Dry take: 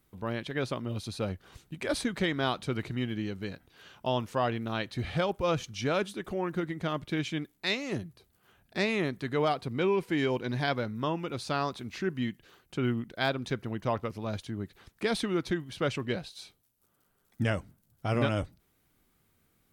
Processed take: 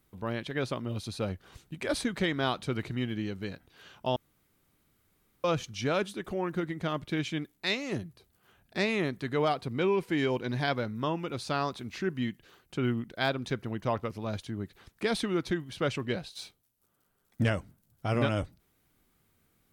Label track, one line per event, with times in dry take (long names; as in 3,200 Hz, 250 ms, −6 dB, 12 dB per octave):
4.160000	5.440000	fill with room tone
16.350000	17.490000	leveller curve on the samples passes 1